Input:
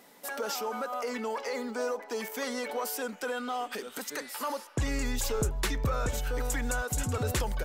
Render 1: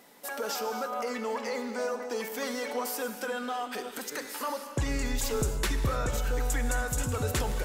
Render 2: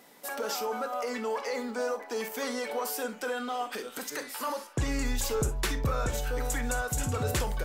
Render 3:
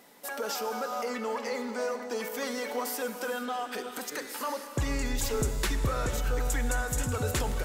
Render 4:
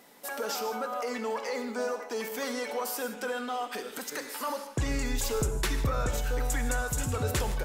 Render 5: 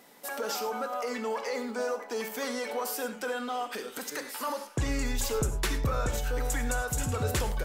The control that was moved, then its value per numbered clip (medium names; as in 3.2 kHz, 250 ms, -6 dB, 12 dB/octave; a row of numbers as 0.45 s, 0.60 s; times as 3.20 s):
gated-style reverb, gate: 320 ms, 80 ms, 500 ms, 190 ms, 130 ms